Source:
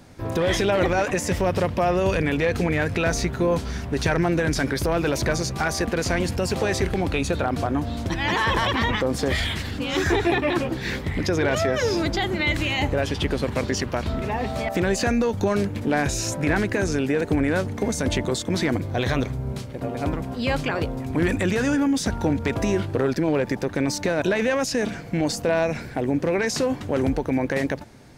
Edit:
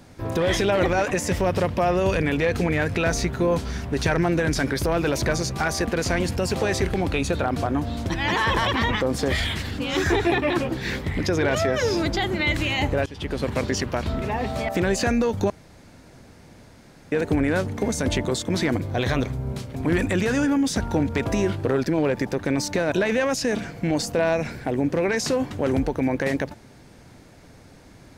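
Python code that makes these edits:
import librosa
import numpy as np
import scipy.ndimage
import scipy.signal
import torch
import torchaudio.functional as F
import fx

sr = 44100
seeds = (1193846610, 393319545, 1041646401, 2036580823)

y = fx.edit(x, sr, fx.fade_in_from(start_s=13.06, length_s=0.42, floor_db=-19.5),
    fx.room_tone_fill(start_s=15.5, length_s=1.62),
    fx.cut(start_s=19.75, length_s=1.3), tone=tone)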